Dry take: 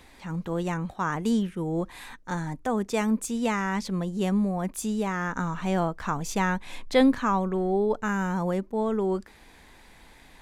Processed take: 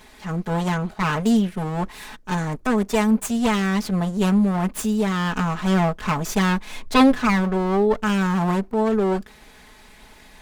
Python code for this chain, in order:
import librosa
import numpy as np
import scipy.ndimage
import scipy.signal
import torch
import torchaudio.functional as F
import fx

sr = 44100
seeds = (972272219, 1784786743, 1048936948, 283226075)

y = fx.lower_of_two(x, sr, delay_ms=4.7)
y = y * librosa.db_to_amplitude(6.5)